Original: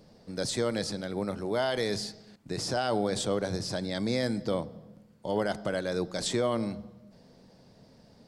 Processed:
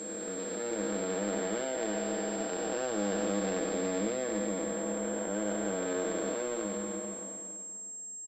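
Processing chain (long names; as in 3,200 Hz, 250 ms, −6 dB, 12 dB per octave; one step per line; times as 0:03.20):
spectrum smeared in time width 1,270 ms
elliptic high-pass filter 210 Hz
comb filter 6.3 ms, depth 71%
in parallel at −3 dB: brickwall limiter −34 dBFS, peak gain reduction 11.5 dB
on the sum: power curve on the samples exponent 1.4
on a send at −7 dB: convolution reverb RT60 0.60 s, pre-delay 3 ms
on the sum: switching amplifier with a slow clock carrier 7,500 Hz
level +2 dB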